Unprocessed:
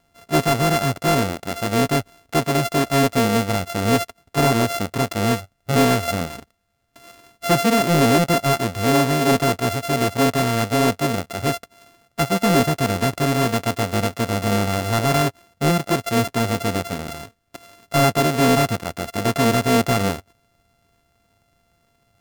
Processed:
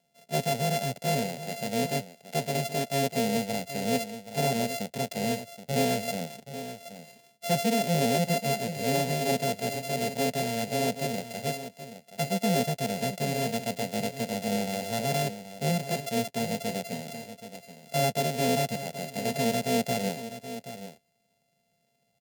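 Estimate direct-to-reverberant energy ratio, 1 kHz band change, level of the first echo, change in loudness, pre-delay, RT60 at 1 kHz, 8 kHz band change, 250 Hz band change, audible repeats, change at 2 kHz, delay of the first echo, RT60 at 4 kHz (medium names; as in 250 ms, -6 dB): no reverb, -10.0 dB, -12.0 dB, -9.5 dB, no reverb, no reverb, -6.5 dB, -10.0 dB, 1, -10.0 dB, 776 ms, no reverb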